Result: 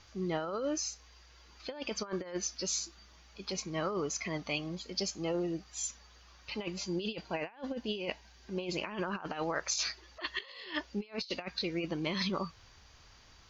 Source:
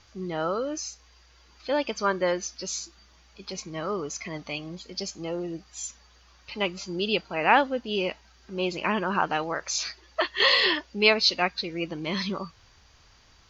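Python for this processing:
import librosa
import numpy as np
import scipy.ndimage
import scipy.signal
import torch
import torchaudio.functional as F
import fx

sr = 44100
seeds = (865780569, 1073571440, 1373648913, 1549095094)

y = fx.notch(x, sr, hz=1300.0, q=7.0, at=(6.63, 8.79))
y = fx.over_compress(y, sr, threshold_db=-30.0, ratio=-0.5)
y = F.gain(torch.from_numpy(y), -5.0).numpy()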